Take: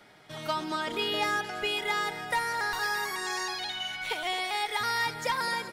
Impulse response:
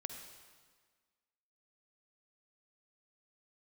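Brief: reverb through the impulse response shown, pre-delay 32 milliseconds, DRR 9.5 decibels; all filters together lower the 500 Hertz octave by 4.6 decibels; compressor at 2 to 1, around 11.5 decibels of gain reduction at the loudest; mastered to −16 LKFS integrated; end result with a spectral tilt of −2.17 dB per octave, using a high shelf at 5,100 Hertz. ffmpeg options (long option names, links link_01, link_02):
-filter_complex "[0:a]equalizer=frequency=500:width_type=o:gain=-6,highshelf=frequency=5100:gain=-4.5,acompressor=threshold=-48dB:ratio=2,asplit=2[link_01][link_02];[1:a]atrim=start_sample=2205,adelay=32[link_03];[link_02][link_03]afir=irnorm=-1:irlink=0,volume=-7.5dB[link_04];[link_01][link_04]amix=inputs=2:normalize=0,volume=25dB"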